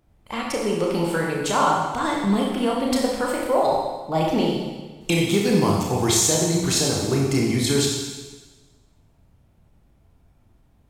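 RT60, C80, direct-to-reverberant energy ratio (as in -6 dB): 1.3 s, 3.5 dB, -2.5 dB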